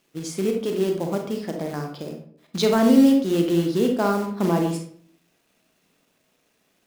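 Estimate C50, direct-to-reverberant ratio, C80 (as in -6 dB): 5.5 dB, 2.5 dB, 10.0 dB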